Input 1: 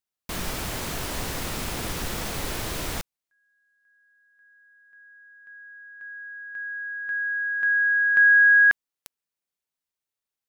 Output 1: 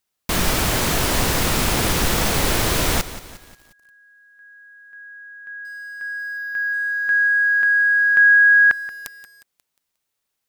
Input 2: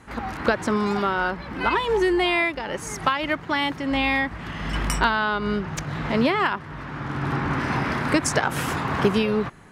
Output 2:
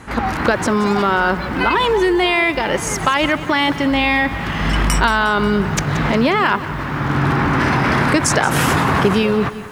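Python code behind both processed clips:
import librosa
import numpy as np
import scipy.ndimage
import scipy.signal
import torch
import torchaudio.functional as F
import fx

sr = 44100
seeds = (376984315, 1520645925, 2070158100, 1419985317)

p1 = fx.over_compress(x, sr, threshold_db=-26.0, ratio=-0.5)
p2 = x + F.gain(torch.from_numpy(p1), -2.0).numpy()
p3 = fx.echo_crushed(p2, sr, ms=179, feedback_pct=55, bits=7, wet_db=-14.5)
y = F.gain(torch.from_numpy(p3), 4.0).numpy()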